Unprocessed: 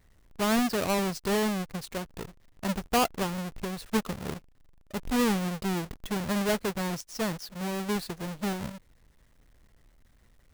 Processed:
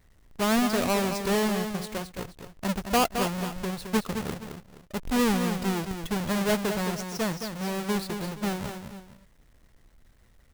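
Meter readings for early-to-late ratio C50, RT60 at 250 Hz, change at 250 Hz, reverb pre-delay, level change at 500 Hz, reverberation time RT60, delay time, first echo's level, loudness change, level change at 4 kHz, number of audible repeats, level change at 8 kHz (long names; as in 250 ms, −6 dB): no reverb audible, no reverb audible, +2.0 dB, no reverb audible, +2.0 dB, no reverb audible, 217 ms, −7.5 dB, +2.0 dB, +2.5 dB, 2, +2.5 dB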